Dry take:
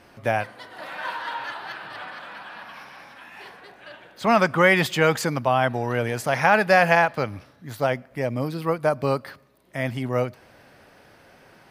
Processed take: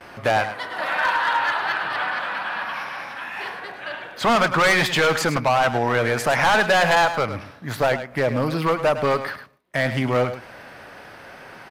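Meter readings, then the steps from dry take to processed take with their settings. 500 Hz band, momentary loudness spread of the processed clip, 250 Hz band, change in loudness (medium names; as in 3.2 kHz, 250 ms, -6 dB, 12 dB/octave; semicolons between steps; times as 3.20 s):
+1.5 dB, 16 LU, +0.5 dB, +1.5 dB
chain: gate with hold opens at -45 dBFS; peaking EQ 1.4 kHz +7 dB 2.7 oct; in parallel at +3 dB: compression, threshold -24 dBFS, peak gain reduction 16.5 dB; on the sum: overload inside the chain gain 12 dB; on a send: delay 105 ms -11 dB; on the sum: loudspeaker Doppler distortion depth 0.1 ms; trim -2 dB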